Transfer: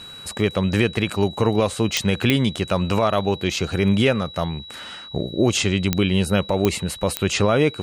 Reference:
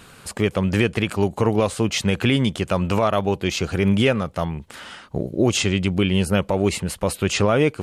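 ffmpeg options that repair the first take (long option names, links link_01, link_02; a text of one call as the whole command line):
ffmpeg -i in.wav -af "adeclick=threshold=4,bandreject=frequency=3900:width=30" out.wav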